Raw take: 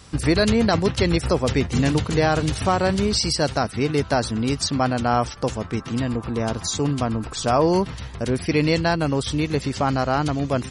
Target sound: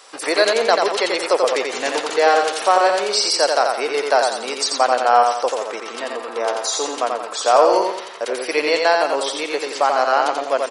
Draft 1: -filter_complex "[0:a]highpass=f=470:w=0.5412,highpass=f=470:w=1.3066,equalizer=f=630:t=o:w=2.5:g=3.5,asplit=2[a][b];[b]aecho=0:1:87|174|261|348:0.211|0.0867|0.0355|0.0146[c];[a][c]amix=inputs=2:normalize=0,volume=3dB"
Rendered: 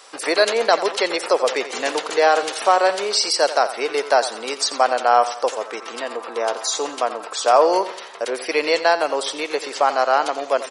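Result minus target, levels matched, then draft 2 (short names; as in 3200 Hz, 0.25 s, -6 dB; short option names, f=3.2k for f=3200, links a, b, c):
echo-to-direct -9.5 dB
-filter_complex "[0:a]highpass=f=470:w=0.5412,highpass=f=470:w=1.3066,equalizer=f=630:t=o:w=2.5:g=3.5,asplit=2[a][b];[b]aecho=0:1:87|174|261|348|435:0.631|0.259|0.106|0.0435|0.0178[c];[a][c]amix=inputs=2:normalize=0,volume=3dB"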